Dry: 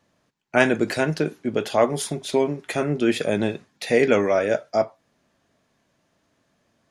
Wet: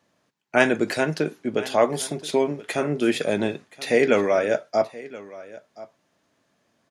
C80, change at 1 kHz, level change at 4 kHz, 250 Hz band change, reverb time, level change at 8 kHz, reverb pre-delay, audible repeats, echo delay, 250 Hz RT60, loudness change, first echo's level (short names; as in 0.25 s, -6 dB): none, 0.0 dB, 0.0 dB, -1.5 dB, none, 0.0 dB, none, 1, 1.026 s, none, -0.5 dB, -19.0 dB